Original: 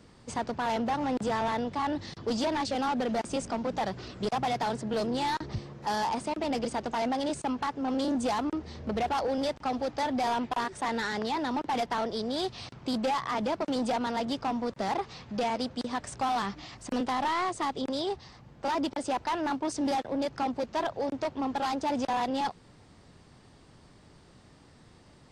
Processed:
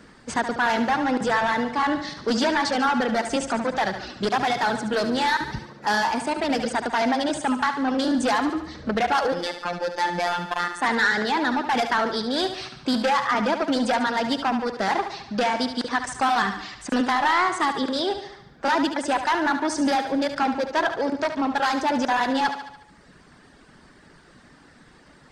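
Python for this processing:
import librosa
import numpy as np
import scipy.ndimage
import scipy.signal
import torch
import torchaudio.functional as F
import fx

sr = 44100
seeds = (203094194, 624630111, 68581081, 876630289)

p1 = fx.dynamic_eq(x, sr, hz=4200.0, q=0.79, threshold_db=-48.0, ratio=4.0, max_db=3)
p2 = fx.dereverb_blind(p1, sr, rt60_s=0.9)
p3 = fx.graphic_eq_15(p2, sr, hz=(100, 250, 1600), db=(-9, 3, 10))
p4 = fx.robotise(p3, sr, hz=175.0, at=(9.32, 10.81))
p5 = p4 + fx.echo_thinned(p4, sr, ms=72, feedback_pct=56, hz=160.0, wet_db=-9, dry=0)
y = p5 * librosa.db_to_amplitude(5.5)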